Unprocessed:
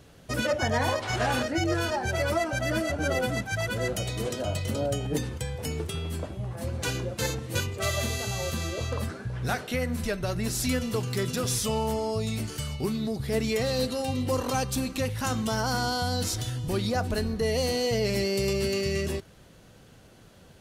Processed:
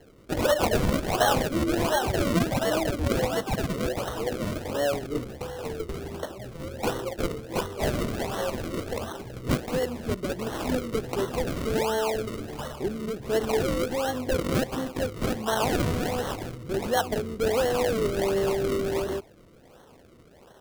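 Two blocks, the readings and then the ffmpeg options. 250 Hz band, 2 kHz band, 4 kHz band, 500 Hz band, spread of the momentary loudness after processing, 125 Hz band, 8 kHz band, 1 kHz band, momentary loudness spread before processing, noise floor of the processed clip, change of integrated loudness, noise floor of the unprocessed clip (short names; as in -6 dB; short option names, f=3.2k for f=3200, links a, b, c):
+1.5 dB, -1.5 dB, -2.0 dB, +3.0 dB, 10 LU, -2.5 dB, -3.5 dB, +2.5 dB, 6 LU, -53 dBFS, +1.0 dB, -53 dBFS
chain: -filter_complex "[0:a]acrossover=split=330 5000:gain=0.141 1 0.224[a][b][c];[a][b][c]amix=inputs=3:normalize=0,acrossover=split=530[d][e];[e]acrusher=samples=36:mix=1:aa=0.000001:lfo=1:lforange=36:lforate=1.4[f];[d][f]amix=inputs=2:normalize=0,volume=6dB"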